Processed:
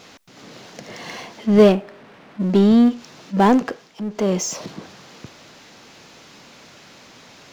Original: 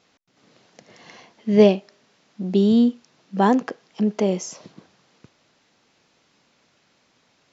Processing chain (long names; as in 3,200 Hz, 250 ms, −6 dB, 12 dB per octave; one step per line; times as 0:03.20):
0:01.72–0:02.42: low-pass filter 2,100 Hz 12 dB per octave
power curve on the samples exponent 0.7
0:03.56–0:04.42: duck −11 dB, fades 0.37 s